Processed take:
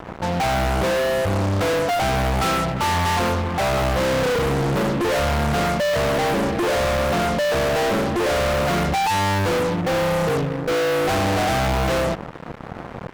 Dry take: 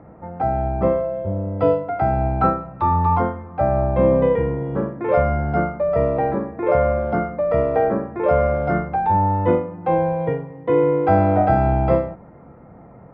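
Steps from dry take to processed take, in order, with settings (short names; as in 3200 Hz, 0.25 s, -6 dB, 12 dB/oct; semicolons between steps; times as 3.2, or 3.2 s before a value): 9.81–11.09 elliptic low-pass 730 Hz; fuzz box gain 39 dB, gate -42 dBFS; gain -6 dB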